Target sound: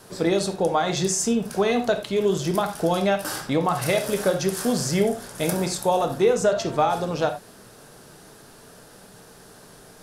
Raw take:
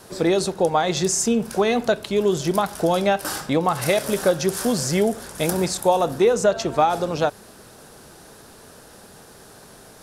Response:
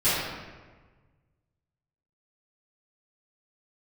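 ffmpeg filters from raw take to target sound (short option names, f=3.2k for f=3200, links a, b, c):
-filter_complex "[0:a]asplit=2[a][b];[1:a]atrim=start_sample=2205,atrim=end_sample=4410[c];[b][c]afir=irnorm=-1:irlink=0,volume=-19dB[d];[a][d]amix=inputs=2:normalize=0,volume=-3.5dB"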